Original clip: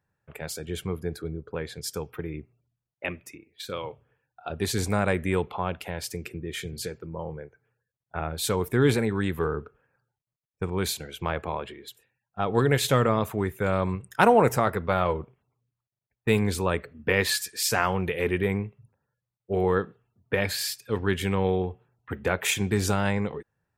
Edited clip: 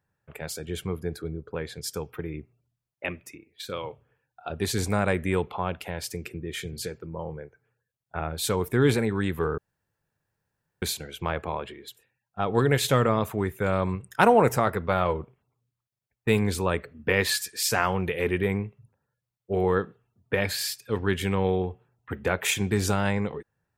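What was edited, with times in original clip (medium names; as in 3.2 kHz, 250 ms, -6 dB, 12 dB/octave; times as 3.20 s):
9.58–10.82 s: room tone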